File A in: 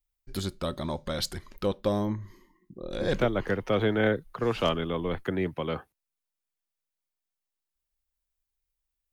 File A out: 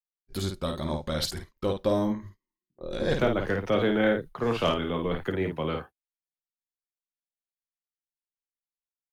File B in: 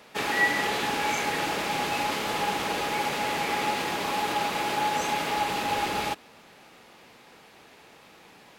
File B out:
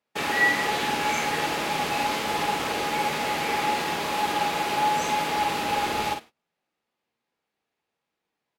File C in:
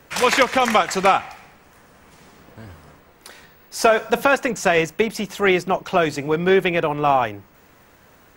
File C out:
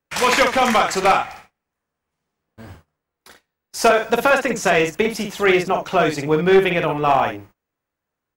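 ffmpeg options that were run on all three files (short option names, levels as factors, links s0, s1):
-af "agate=range=0.0251:threshold=0.01:ratio=16:detection=peak,aecho=1:1:13|52:0.335|0.531,aeval=exprs='clip(val(0),-1,0.335)':c=same"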